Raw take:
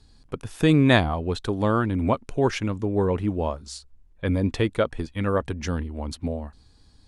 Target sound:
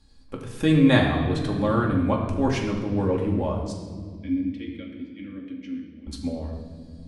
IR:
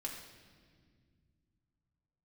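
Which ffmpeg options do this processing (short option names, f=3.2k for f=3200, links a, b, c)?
-filter_complex "[0:a]asettb=1/sr,asplit=3[a][b][c];[a]atrim=end=3.724[d];[b]atrim=start=3.72:end=6.07,asetpts=PTS-STARTPTS,afade=t=in:d=0.004:c=qsin,afade=t=out:st=2.346:d=0.004:c=qsin,asplit=3[e][f][g];[e]bandpass=f=270:t=q:w=8,volume=0dB[h];[f]bandpass=f=2.29k:t=q:w=8,volume=-6dB[i];[g]bandpass=f=3.01k:t=q:w=8,volume=-9dB[j];[h][i][j]amix=inputs=3:normalize=0[k];[c]atrim=start=6.066[l];[d][k]acrossfade=d=0.004:c1=hsin:c2=qsin[m];[m][l]acrossfade=d=0.004:c1=qsin:c2=hsin[n];[1:a]atrim=start_sample=2205[o];[n][o]afir=irnorm=-1:irlink=0"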